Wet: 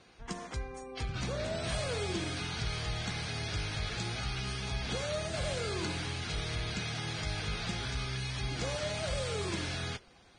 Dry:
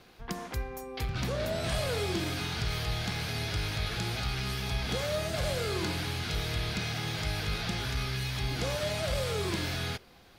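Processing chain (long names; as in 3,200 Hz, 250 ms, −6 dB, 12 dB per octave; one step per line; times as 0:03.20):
level −3.5 dB
Ogg Vorbis 16 kbit/s 22,050 Hz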